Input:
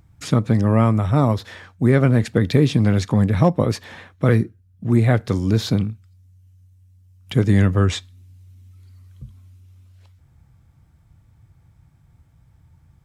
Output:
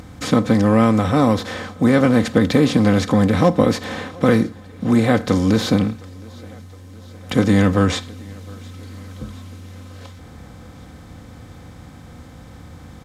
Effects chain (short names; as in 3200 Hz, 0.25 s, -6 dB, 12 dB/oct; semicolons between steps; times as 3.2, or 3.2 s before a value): per-bin compression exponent 0.6; comb 3.9 ms, depth 58%; on a send: thinning echo 0.714 s, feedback 68%, high-pass 180 Hz, level -23.5 dB; on the sum: gain -1 dB